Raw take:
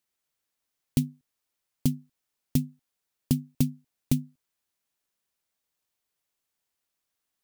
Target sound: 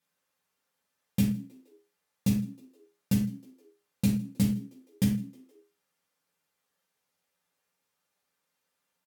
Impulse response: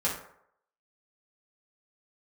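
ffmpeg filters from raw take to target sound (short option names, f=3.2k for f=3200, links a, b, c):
-filter_complex "[0:a]highpass=f=170:p=1,highshelf=f=5.3k:g=-4.5,asplit=2[a][b];[b]alimiter=limit=-21.5dB:level=0:latency=1,volume=-1.5dB[c];[a][c]amix=inputs=2:normalize=0,asetrate=36162,aresample=44100,asplit=4[d][e][f][g];[e]adelay=157,afreqshift=68,volume=-24dB[h];[f]adelay=314,afreqshift=136,volume=-30.2dB[i];[g]adelay=471,afreqshift=204,volume=-36.4dB[j];[d][h][i][j]amix=inputs=4:normalize=0[k];[1:a]atrim=start_sample=2205,atrim=end_sample=6174[l];[k][l]afir=irnorm=-1:irlink=0,volume=-7dB"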